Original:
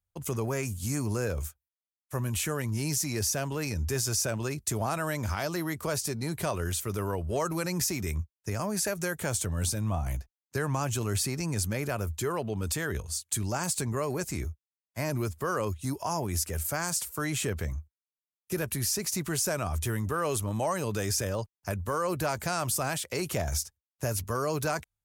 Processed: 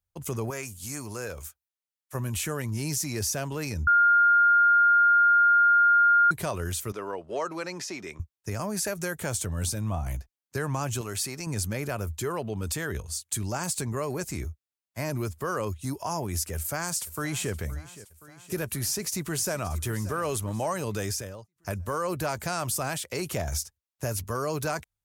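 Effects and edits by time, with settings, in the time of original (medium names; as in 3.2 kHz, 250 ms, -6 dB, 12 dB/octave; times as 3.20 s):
0.50–2.15 s: bass shelf 410 Hz -10.5 dB
3.87–6.31 s: bleep 1.41 kHz -16 dBFS
6.92–8.20 s: band-pass 330–4700 Hz
11.01–11.47 s: bass shelf 270 Hz -10 dB
16.54–17.52 s: echo throw 520 ms, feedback 65%, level -17 dB
18.80–19.72 s: echo throw 580 ms, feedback 45%, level -16 dB
21.06–21.56 s: fade out quadratic, to -16 dB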